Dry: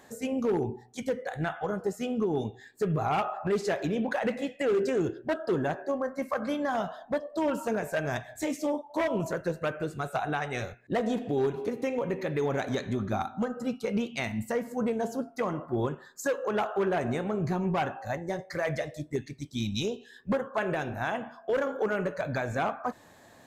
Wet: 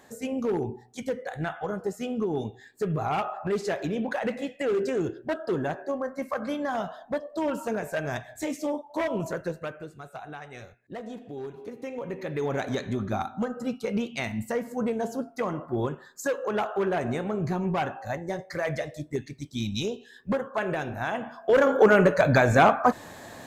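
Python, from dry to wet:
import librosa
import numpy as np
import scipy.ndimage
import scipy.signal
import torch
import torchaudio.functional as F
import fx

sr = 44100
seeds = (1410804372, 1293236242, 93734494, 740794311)

y = fx.gain(x, sr, db=fx.line((9.43, 0.0), (9.96, -10.0), (11.47, -10.0), (12.57, 1.0), (21.1, 1.0), (21.79, 11.5)))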